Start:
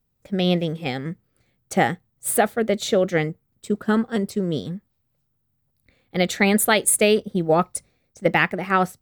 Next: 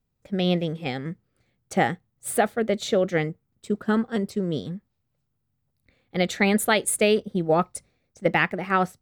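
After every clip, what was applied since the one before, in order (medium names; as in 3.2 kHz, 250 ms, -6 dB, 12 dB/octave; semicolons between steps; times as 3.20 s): treble shelf 9.6 kHz -8.5 dB; trim -2.5 dB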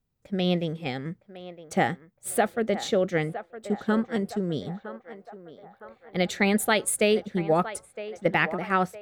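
band-passed feedback delay 962 ms, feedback 60%, band-pass 910 Hz, level -11 dB; trim -2 dB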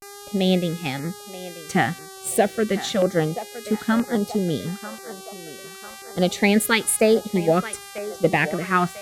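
mains buzz 400 Hz, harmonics 33, -45 dBFS -3 dB/octave; LFO notch saw down 1 Hz 360–3400 Hz; vibrato 0.32 Hz 70 cents; trim +5.5 dB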